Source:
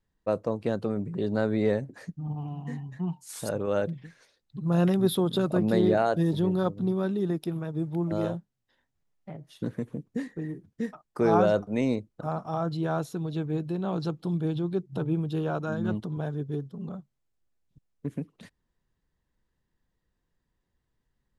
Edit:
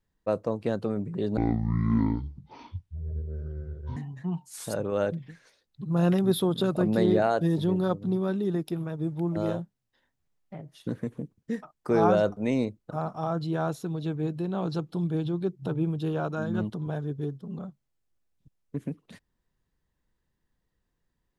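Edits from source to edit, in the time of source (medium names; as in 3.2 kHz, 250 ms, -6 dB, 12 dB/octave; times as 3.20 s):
1.37–2.72 s: speed 52%
10.13–10.68 s: delete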